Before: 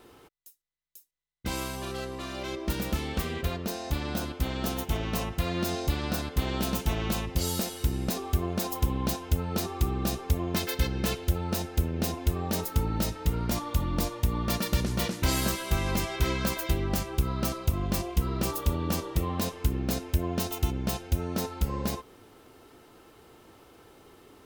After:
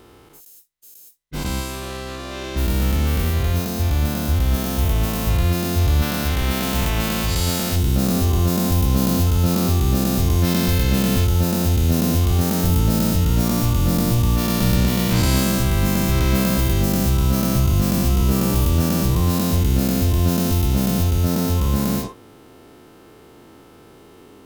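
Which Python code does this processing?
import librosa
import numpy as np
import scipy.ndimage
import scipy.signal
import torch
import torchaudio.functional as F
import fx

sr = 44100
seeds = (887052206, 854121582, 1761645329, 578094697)

y = fx.spec_dilate(x, sr, span_ms=240)
y = fx.peak_eq(y, sr, hz=fx.steps((0.0, 71.0), (6.02, 2000.0), (7.76, 190.0)), db=5.5, octaves=2.0)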